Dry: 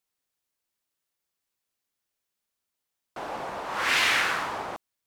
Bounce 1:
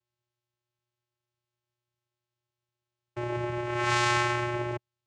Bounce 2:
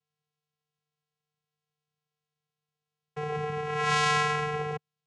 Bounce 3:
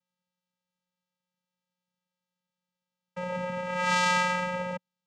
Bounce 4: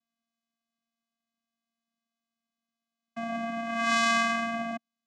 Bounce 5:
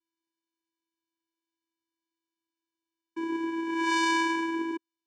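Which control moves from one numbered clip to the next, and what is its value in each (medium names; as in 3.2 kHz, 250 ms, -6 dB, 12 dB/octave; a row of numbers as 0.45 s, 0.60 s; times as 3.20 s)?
vocoder, frequency: 120 Hz, 150 Hz, 180 Hz, 230 Hz, 330 Hz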